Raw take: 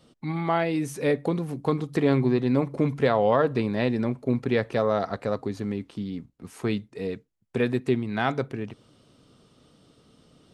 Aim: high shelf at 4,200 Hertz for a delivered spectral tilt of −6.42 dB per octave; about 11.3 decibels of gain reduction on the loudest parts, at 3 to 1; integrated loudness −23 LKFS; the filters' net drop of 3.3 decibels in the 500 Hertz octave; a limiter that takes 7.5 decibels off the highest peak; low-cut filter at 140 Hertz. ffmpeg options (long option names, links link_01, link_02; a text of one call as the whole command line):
ffmpeg -i in.wav -af "highpass=140,equalizer=frequency=500:width_type=o:gain=-4,highshelf=frequency=4200:gain=-4,acompressor=threshold=-35dB:ratio=3,volume=16.5dB,alimiter=limit=-11.5dB:level=0:latency=1" out.wav